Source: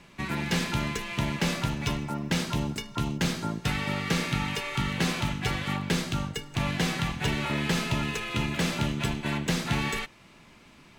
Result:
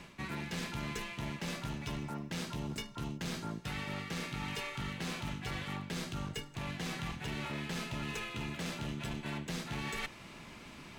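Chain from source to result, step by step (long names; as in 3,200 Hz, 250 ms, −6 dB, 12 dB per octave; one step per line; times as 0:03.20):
reversed playback
downward compressor 8 to 1, threshold −39 dBFS, peak gain reduction 17.5 dB
reversed playback
asymmetric clip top −40 dBFS
level +3.5 dB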